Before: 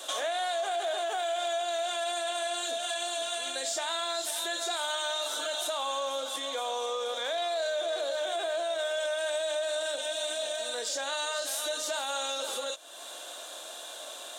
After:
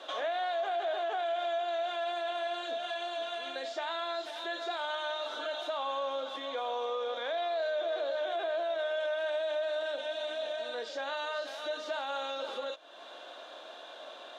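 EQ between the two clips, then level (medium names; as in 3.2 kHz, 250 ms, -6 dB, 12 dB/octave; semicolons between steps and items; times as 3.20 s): distance through air 290 m; 0.0 dB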